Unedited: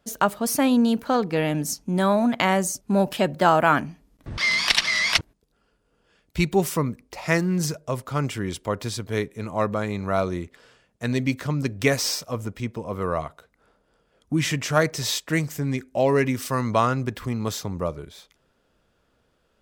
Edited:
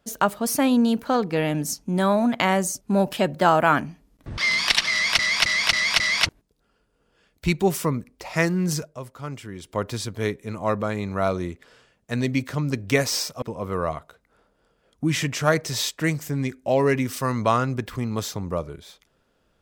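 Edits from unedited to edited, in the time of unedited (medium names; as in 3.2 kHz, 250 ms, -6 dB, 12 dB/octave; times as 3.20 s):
4.92–5.19 s: loop, 5 plays
7.75–8.69 s: dip -8.5 dB, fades 0.14 s
12.34–12.71 s: delete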